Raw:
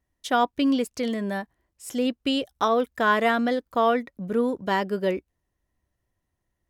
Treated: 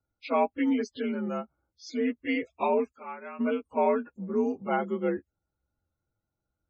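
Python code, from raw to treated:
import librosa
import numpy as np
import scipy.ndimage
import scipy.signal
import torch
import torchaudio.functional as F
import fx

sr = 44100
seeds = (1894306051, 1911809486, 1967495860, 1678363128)

y = fx.partial_stretch(x, sr, pct=86)
y = fx.spec_topn(y, sr, count=64)
y = fx.pre_emphasis(y, sr, coefficient=0.9, at=(2.91, 3.39), fade=0.02)
y = F.gain(torch.from_numpy(y), -2.5).numpy()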